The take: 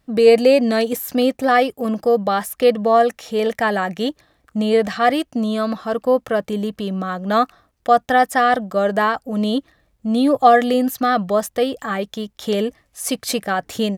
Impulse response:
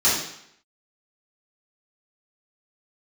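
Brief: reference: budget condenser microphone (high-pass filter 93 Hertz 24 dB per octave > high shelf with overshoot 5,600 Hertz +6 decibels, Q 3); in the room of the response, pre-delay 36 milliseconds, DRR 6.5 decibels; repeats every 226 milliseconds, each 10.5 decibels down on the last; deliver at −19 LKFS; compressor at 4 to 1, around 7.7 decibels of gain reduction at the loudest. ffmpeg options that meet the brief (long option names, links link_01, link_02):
-filter_complex "[0:a]acompressor=threshold=-16dB:ratio=4,aecho=1:1:226|452|678:0.299|0.0896|0.0269,asplit=2[link_01][link_02];[1:a]atrim=start_sample=2205,adelay=36[link_03];[link_02][link_03]afir=irnorm=-1:irlink=0,volume=-23.5dB[link_04];[link_01][link_04]amix=inputs=2:normalize=0,highpass=frequency=93:width=0.5412,highpass=frequency=93:width=1.3066,highshelf=frequency=5600:width_type=q:width=3:gain=6,volume=1.5dB"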